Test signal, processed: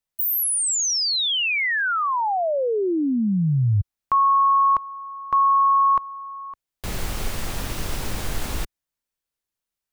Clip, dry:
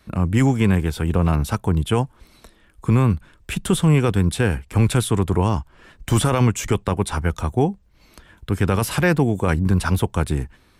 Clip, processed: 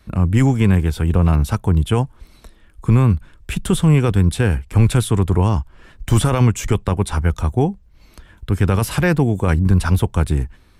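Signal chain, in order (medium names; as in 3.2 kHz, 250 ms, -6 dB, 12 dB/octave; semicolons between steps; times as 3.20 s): bass shelf 94 Hz +10 dB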